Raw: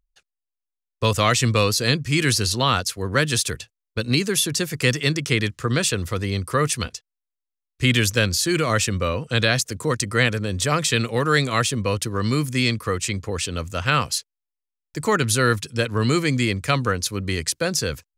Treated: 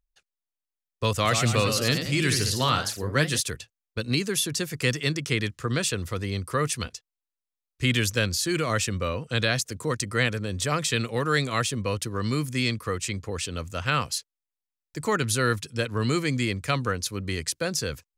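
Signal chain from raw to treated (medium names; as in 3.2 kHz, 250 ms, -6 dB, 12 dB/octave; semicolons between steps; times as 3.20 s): 1.12–3.41 s: ever faster or slower copies 130 ms, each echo +1 st, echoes 3, each echo -6 dB; trim -5 dB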